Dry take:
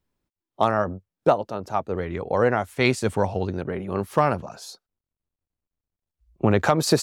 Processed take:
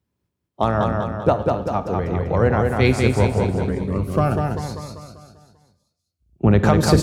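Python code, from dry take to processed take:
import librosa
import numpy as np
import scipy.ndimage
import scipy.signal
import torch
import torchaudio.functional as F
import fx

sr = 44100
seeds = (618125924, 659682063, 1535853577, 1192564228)

y = fx.octave_divider(x, sr, octaves=2, level_db=-4.0)
y = scipy.signal.sosfilt(scipy.signal.butter(4, 74.0, 'highpass', fs=sr, output='sos'), y)
y = fx.low_shelf(y, sr, hz=220.0, db=10.5)
y = fx.echo_feedback(y, sr, ms=196, feedback_pct=51, wet_db=-3.5)
y = fx.rev_schroeder(y, sr, rt60_s=0.75, comb_ms=31, drr_db=13.5)
y = fx.notch_cascade(y, sr, direction='rising', hz=1.0, at=(3.72, 6.45), fade=0.02)
y = y * librosa.db_to_amplitude(-1.0)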